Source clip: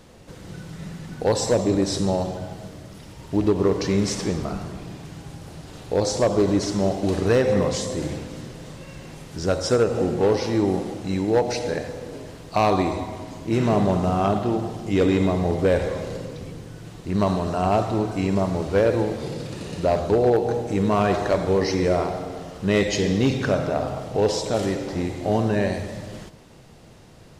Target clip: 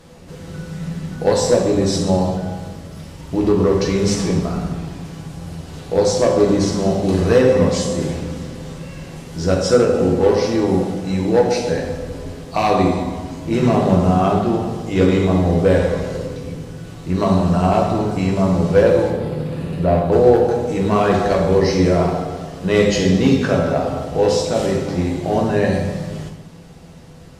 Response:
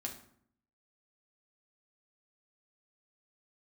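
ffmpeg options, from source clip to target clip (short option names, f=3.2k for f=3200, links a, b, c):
-filter_complex "[0:a]asettb=1/sr,asplit=3[a][b][c];[a]atrim=end=19.104[d];[b]atrim=start=19.1:end=20.12,asetpts=PTS-STARTPTS,afade=t=in:d=0.004:c=qsin,afade=t=out:st=1.016:d=0.004:c=qsin,equalizer=f=6.2k:t=o:w=1.2:g=-15[e];[c]atrim=start=20.116[f];[d][e]acrossfade=d=0.004:c1=hsin:c2=qsin[g];[g][f]acrossfade=d=0.004:c1=qsin:c2=hsin[h];[1:a]atrim=start_sample=2205,asetrate=30870,aresample=44100[i];[h][i]afir=irnorm=-1:irlink=0,asettb=1/sr,asplit=3[j][k][l];[j]atrim=end=11.634[m];[k]atrim=start=11.63:end=12.32,asetpts=PTS-STARTPTS,afade=t=in:d=0.004:c=qsin,afade=t=out:st=0.686:d=0.004:c=qsin,asubboost=boost=11.5:cutoff=130[n];[l]atrim=start=12.316[o];[m][n]acrossfade=d=0.004:c1=hsin:c2=qsin[p];[p][o]acrossfade=d=0.004:c1=qsin:c2=hsin,volume=3.5dB"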